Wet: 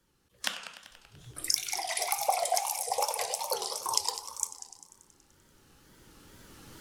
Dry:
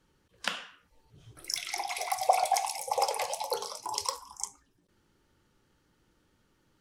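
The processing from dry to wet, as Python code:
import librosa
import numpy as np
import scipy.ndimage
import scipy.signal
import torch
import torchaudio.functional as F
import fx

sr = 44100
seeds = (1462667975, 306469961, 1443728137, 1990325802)

y = fx.recorder_agc(x, sr, target_db=-14.5, rise_db_per_s=10.0, max_gain_db=30)
y = fx.high_shelf(y, sr, hz=6000.0, db=10.0)
y = fx.echo_heads(y, sr, ms=96, heads='first and second', feedback_pct=57, wet_db=-16.0)
y = fx.wow_flutter(y, sr, seeds[0], rate_hz=2.1, depth_cents=130.0)
y = y * 10.0 ** (-4.5 / 20.0)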